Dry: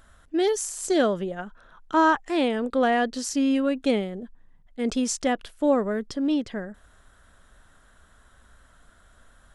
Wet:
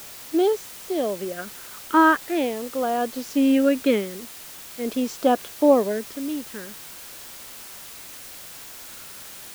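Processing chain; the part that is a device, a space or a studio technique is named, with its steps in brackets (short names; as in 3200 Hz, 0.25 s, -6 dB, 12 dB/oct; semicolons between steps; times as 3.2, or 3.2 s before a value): shortwave radio (BPF 270–2700 Hz; tremolo 0.55 Hz, depth 69%; LFO notch sine 0.42 Hz 670–2000 Hz; white noise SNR 16 dB); gain +7.5 dB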